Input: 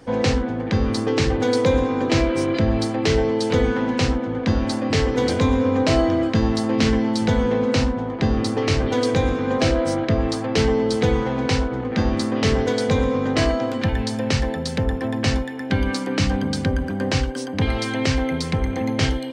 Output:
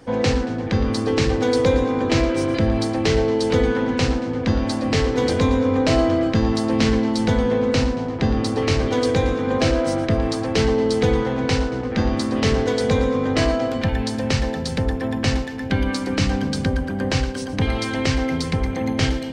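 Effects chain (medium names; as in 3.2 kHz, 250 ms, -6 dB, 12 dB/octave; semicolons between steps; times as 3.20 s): two-band feedback delay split 310 Hz, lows 380 ms, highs 114 ms, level -14.5 dB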